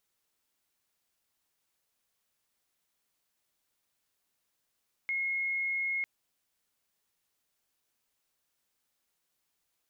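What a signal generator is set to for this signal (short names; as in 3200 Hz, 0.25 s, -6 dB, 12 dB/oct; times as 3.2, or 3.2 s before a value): tone sine 2160 Hz -29 dBFS 0.95 s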